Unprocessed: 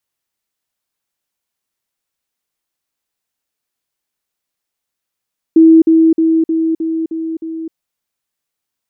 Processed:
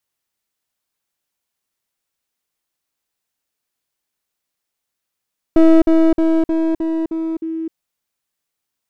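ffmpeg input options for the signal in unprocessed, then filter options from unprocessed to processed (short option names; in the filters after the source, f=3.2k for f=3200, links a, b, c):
-f lavfi -i "aevalsrc='pow(10,(-2.5-3*floor(t/0.31))/20)*sin(2*PI*324*t)*clip(min(mod(t,0.31),0.26-mod(t,0.31))/0.005,0,1)':d=2.17:s=44100"
-af "aeval=exprs='clip(val(0),-1,0.0891)':c=same"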